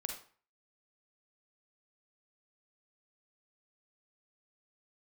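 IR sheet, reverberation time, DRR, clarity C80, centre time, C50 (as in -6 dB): 0.45 s, 2.5 dB, 10.5 dB, 25 ms, 4.5 dB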